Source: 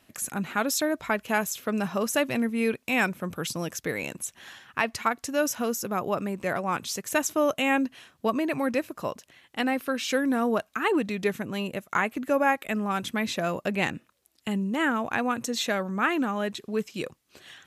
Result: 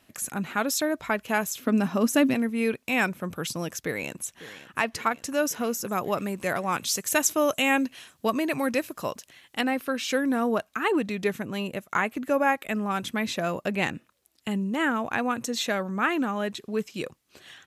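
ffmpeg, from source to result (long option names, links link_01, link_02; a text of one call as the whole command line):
ffmpeg -i in.wav -filter_complex "[0:a]asettb=1/sr,asplit=3[link_01][link_02][link_03];[link_01]atrim=end=1.584[link_04];[link_02]atrim=start=1.58:end=2.34,asetpts=PTS-STARTPTS,afade=type=in:duration=0.004:curve=qsin,afade=type=out:start_time=0.756:duration=0.004:curve=qsin,equalizer=frequency=260:width_type=o:width=0.44:gain=14.5[link_05];[link_03]atrim=start=2.336[link_06];[link_04][link_05]acrossfade=duration=0.004:curve1=hsin:curve2=qsin[link_07];[link_07][link_06]acrossfade=duration=0.004:curve1=qsin:curve2=hsin,asplit=2[link_08][link_09];[link_09]afade=type=in:start_time=3.8:duration=0.01,afade=type=out:start_time=4.78:duration=0.01,aecho=0:1:550|1100|1650|2200|2750|3300|3850|4400:0.16788|0.117516|0.0822614|0.057583|0.0403081|0.0282157|0.019751|0.0138257[link_10];[link_08][link_10]amix=inputs=2:normalize=0,asettb=1/sr,asplit=3[link_11][link_12][link_13];[link_11]atrim=end=5.924[link_14];[link_12]atrim=start=5.92:end=9.61,asetpts=PTS-STARTPTS,afade=type=in:duration=0.004:curve=qsin,afade=type=out:start_time=3.686:duration=0.004:curve=qsin,highshelf=frequency=3100:gain=7.5[link_15];[link_13]atrim=start=9.606[link_16];[link_14][link_15]acrossfade=duration=0.004:curve1=hsin:curve2=qsin[link_17];[link_17][link_16]acrossfade=duration=0.004:curve1=qsin:curve2=hsin" out.wav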